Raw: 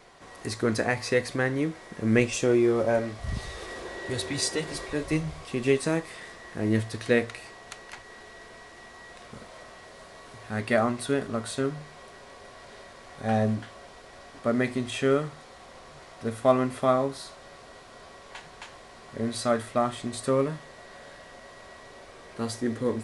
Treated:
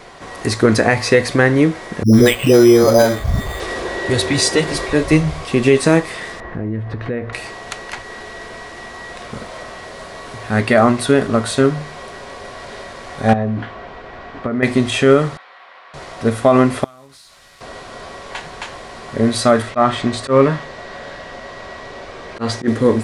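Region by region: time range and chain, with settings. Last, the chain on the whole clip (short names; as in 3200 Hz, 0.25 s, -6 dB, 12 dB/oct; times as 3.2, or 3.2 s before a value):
2.03–3.6 dispersion highs, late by 0.11 s, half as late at 400 Hz + careless resampling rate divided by 8×, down filtered, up hold
6.4–7.33 LPF 1700 Hz + low shelf 120 Hz +8.5 dB + compressor 4:1, threshold -36 dBFS
13.33–14.63 LPF 2700 Hz + compressor 12:1, threshold -30 dBFS + notch 570 Hz, Q 14
15.37–15.94 HPF 1200 Hz + air absorption 370 m
16.84–17.61 CVSD 64 kbps + passive tone stack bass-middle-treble 5-5-5 + compressor, threshold -54 dBFS
19.62–22.68 LPF 6200 Hz + dynamic EQ 1500 Hz, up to +4 dB, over -41 dBFS, Q 0.71 + auto swell 0.111 s
whole clip: high shelf 6000 Hz -4.5 dB; maximiser +15.5 dB; gain -1 dB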